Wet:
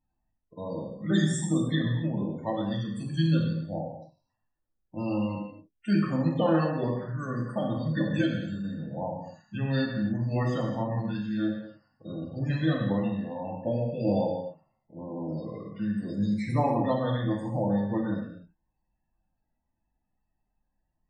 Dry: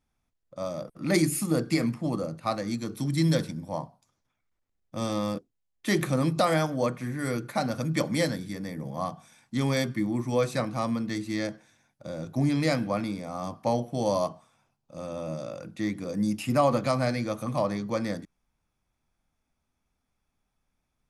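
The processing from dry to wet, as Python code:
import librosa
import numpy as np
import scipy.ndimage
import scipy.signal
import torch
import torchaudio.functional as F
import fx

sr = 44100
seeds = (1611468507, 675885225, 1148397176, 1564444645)

y = fx.formant_shift(x, sr, semitones=-4)
y = fx.spec_topn(y, sr, count=32)
y = fx.rev_gated(y, sr, seeds[0], gate_ms=310, shape='falling', drr_db=-0.5)
y = y * 10.0 ** (-3.5 / 20.0)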